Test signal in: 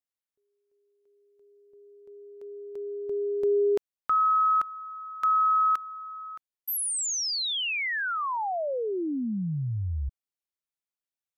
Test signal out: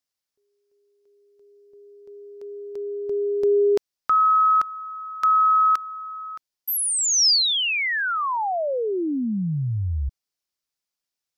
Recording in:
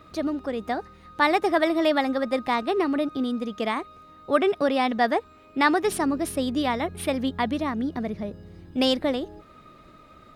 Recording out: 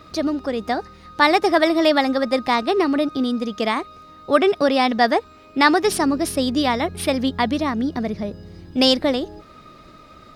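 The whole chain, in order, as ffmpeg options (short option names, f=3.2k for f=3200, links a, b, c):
-af "equalizer=f=5.1k:t=o:w=0.67:g=8,volume=5dB"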